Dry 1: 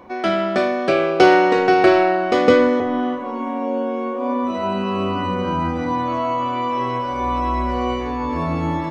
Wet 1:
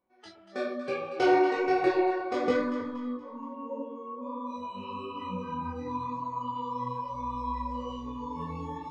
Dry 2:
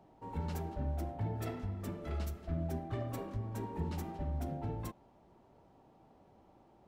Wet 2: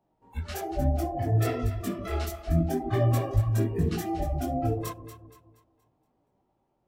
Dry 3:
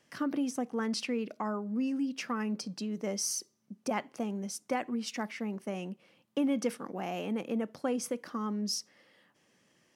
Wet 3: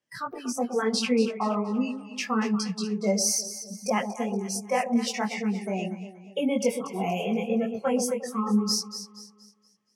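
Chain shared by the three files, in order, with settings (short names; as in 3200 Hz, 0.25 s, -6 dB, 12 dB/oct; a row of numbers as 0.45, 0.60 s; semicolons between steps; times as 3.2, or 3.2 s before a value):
spectral noise reduction 24 dB; echo with dull and thin repeats by turns 0.118 s, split 810 Hz, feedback 61%, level -7.5 dB; chorus voices 4, 1 Hz, delay 20 ms, depth 4.6 ms; normalise peaks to -12 dBFS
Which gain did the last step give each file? -10.0, +15.5, +11.0 dB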